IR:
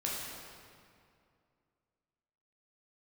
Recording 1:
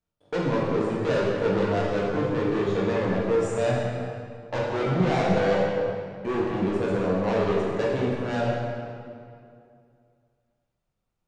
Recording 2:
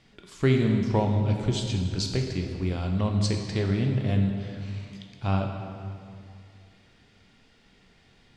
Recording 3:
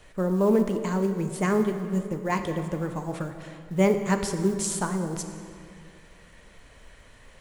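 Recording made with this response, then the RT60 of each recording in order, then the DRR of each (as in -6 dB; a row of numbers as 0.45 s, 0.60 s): 1; 2.4 s, 2.4 s, 2.3 s; -5.0 dB, 2.0 dB, 6.5 dB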